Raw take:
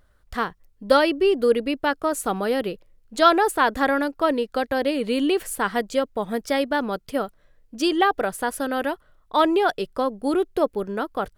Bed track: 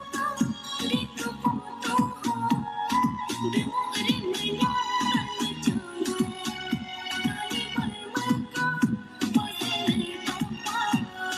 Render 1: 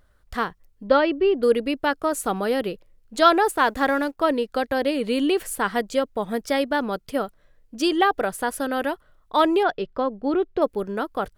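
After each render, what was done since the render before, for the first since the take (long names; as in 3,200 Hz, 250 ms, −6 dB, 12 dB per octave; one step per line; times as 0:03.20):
0:00.87–0:01.43: high-frequency loss of the air 240 metres
0:03.47–0:04.19: mu-law and A-law mismatch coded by A
0:09.63–0:10.62: high-frequency loss of the air 190 metres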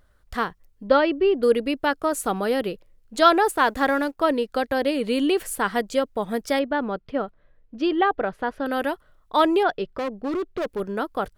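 0:06.59–0:08.66: high-frequency loss of the air 300 metres
0:09.84–0:10.80: hard clipping −23 dBFS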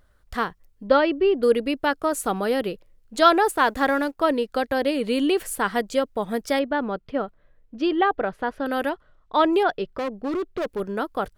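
0:08.89–0:09.53: high-frequency loss of the air 94 metres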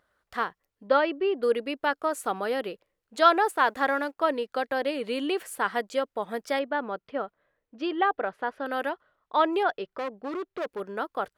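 high-pass filter 720 Hz 6 dB per octave
high-shelf EQ 3,300 Hz −9.5 dB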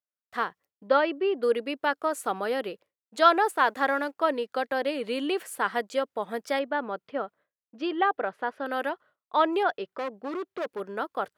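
downward expander −50 dBFS
high-pass filter 120 Hz 12 dB per octave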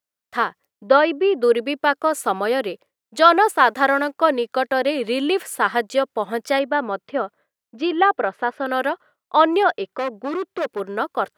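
level +8 dB
brickwall limiter −2 dBFS, peak gain reduction 2.5 dB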